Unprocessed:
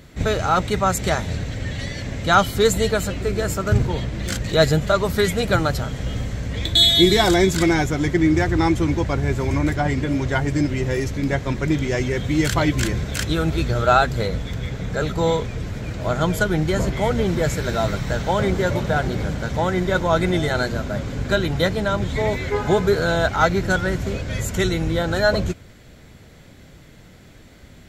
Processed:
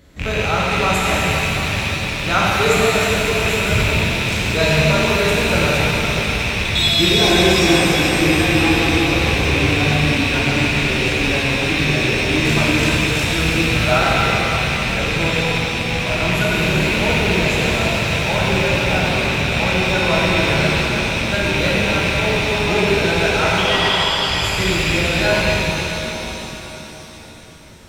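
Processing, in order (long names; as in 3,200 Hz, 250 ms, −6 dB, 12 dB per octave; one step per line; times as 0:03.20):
loose part that buzzes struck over −24 dBFS, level −7 dBFS
0:23.58–0:24.25: voice inversion scrambler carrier 3,400 Hz
reverb with rising layers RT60 3.9 s, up +7 semitones, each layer −8 dB, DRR −6.5 dB
level −6 dB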